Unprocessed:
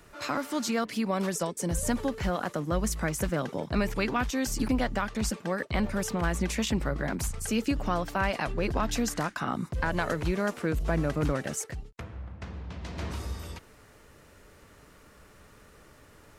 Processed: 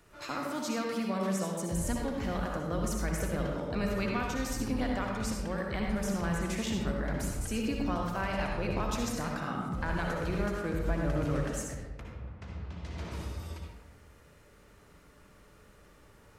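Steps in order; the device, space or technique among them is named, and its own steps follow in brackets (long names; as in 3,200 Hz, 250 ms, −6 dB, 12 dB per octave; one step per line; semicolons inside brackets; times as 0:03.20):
bathroom (convolution reverb RT60 1.2 s, pre-delay 56 ms, DRR 0 dB)
level −7 dB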